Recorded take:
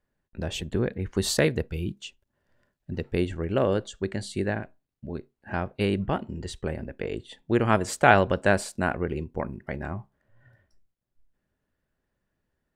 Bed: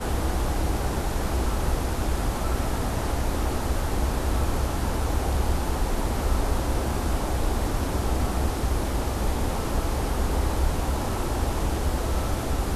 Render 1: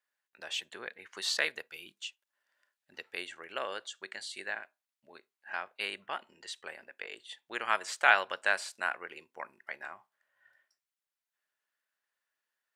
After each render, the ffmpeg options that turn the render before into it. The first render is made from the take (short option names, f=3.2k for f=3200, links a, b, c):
-filter_complex "[0:a]highpass=1.3k,acrossover=split=5700[a][b];[b]acompressor=threshold=-47dB:ratio=4:attack=1:release=60[c];[a][c]amix=inputs=2:normalize=0"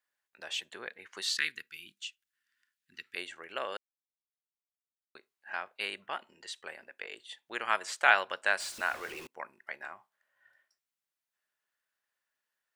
-filter_complex "[0:a]asettb=1/sr,asplit=3[a][b][c];[a]atrim=end=1.234[d];[b]atrim=start=1.23:end=3.16,asetpts=PTS-STARTPTS,afade=t=in:d=0.004:c=qsin,afade=t=out:st=1.926:d=0.004:c=qsin,asuperstop=centerf=660:order=4:qfactor=0.54[e];[c]atrim=start=3.156[f];[d][e]acrossfade=d=0.004:c1=hsin:c2=qsin[g];[g][f]acrossfade=d=0.004:c1=qsin:c2=hsin,asettb=1/sr,asplit=3[h][i][j];[h]atrim=end=8.604[k];[i]atrim=start=8.6:end=9.27,asetpts=PTS-STARTPTS,afade=t=in:d=0.004:c=qsin,afade=t=out:st=0.666:d=0.004:c=qsin,aeval=exprs='val(0)+0.5*0.00841*sgn(val(0))':c=same[l];[j]atrim=start=9.266[m];[k][l]acrossfade=d=0.004:c1=hsin:c2=qsin[n];[n][m]acrossfade=d=0.004:c1=qsin:c2=hsin,asplit=3[o][p][q];[o]atrim=end=3.77,asetpts=PTS-STARTPTS,afade=t=out:st=3.766:d=0.004:c=hsin[r];[p]atrim=start=3.77:end=5.15,asetpts=PTS-STARTPTS,volume=0[s];[q]atrim=start=5.15,asetpts=PTS-STARTPTS,afade=t=in:d=0.004:c=hsin[t];[r][s][t]concat=n=3:v=0:a=1"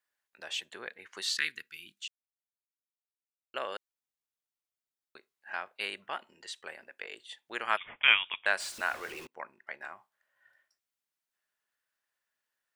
-filter_complex "[0:a]asettb=1/sr,asplit=3[a][b][c];[a]atrim=end=7.774[d];[b]atrim=start=7.77:end=8.46,asetpts=PTS-STARTPTS,afade=t=in:d=0.004:c=qsin,afade=t=out:st=0.686:d=0.004:c=qsin,lowpass=f=3.3k:t=q:w=0.5098,lowpass=f=3.3k:t=q:w=0.6013,lowpass=f=3.3k:t=q:w=0.9,lowpass=f=3.3k:t=q:w=2.563,afreqshift=-3900[e];[c]atrim=start=8.456[f];[d][e]acrossfade=d=0.004:c1=hsin:c2=qsin[g];[g][f]acrossfade=d=0.004:c1=qsin:c2=hsin,asettb=1/sr,asplit=3[h][i][j];[h]atrim=end=9.254[k];[i]atrim=start=9.25:end=9.81,asetpts=PTS-STARTPTS,afade=t=in:d=0.004:c=qsin,afade=t=out:st=0.556:d=0.004:c=qsin,equalizer=f=14k:w=0.31:g=-10[l];[j]atrim=start=9.806[m];[k][l]acrossfade=d=0.004:c1=hsin:c2=qsin[n];[n][m]acrossfade=d=0.004:c1=qsin:c2=hsin,asplit=3[o][p][q];[o]atrim=end=2.08,asetpts=PTS-STARTPTS,afade=t=out:st=2.076:d=0.004:c=hsin[r];[p]atrim=start=2.08:end=3.54,asetpts=PTS-STARTPTS,volume=0[s];[q]atrim=start=3.54,asetpts=PTS-STARTPTS,afade=t=in:d=0.004:c=hsin[t];[r][s][t]concat=n=3:v=0:a=1"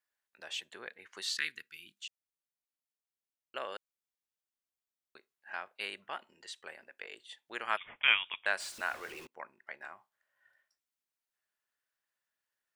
-af "volume=-3.5dB"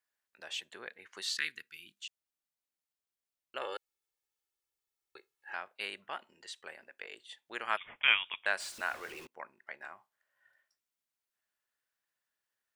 -filter_complex "[0:a]asettb=1/sr,asplit=3[a][b][c];[a]atrim=end=3.614[d];[b]atrim=start=3.61:end=5.54,asetpts=PTS-STARTPTS,afade=t=in:d=0.004:c=qsin,afade=t=out:st=1.926:d=0.004:c=qsin,aecho=1:1:2.3:0.96,atrim=end_sample=85113[e];[c]atrim=start=5.536[f];[d][e]acrossfade=d=0.004:c1=hsin:c2=qsin[g];[g][f]acrossfade=d=0.004:c1=qsin:c2=hsin"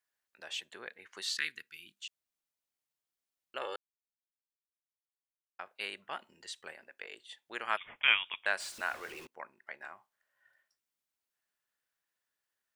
-filter_complex "[0:a]asettb=1/sr,asplit=3[a][b][c];[a]atrim=end=6.114[d];[b]atrim=start=6.11:end=6.72,asetpts=PTS-STARTPTS,afade=t=in:d=0.004:c=qsin,afade=t=out:st=0.606:d=0.004:c=qsin,bass=f=250:g=6,treble=f=4k:g=3[e];[c]atrim=start=6.716[f];[d][e]acrossfade=d=0.004:c1=hsin:c2=qsin[g];[g][f]acrossfade=d=0.004:c1=qsin:c2=hsin,asplit=3[h][i][j];[h]atrim=end=3.76,asetpts=PTS-STARTPTS,afade=t=out:st=3.756:d=0.004:c=hsin[k];[i]atrim=start=3.76:end=5.59,asetpts=PTS-STARTPTS,volume=0[l];[j]atrim=start=5.59,asetpts=PTS-STARTPTS,afade=t=in:d=0.004:c=hsin[m];[k][l][m]concat=n=3:v=0:a=1"